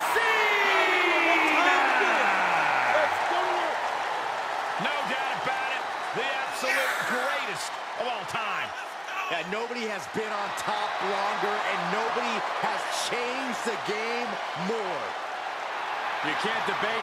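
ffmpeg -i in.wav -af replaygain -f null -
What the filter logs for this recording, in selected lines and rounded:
track_gain = +6.4 dB
track_peak = 0.250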